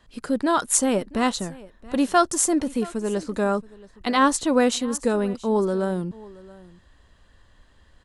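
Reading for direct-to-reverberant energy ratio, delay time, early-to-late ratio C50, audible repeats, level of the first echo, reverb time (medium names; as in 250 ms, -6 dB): no reverb, 676 ms, no reverb, 1, -21.0 dB, no reverb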